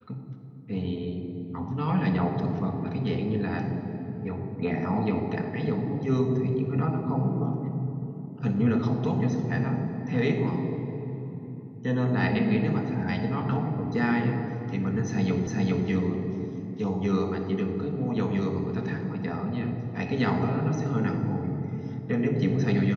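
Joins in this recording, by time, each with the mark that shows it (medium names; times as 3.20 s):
15.47 s: repeat of the last 0.41 s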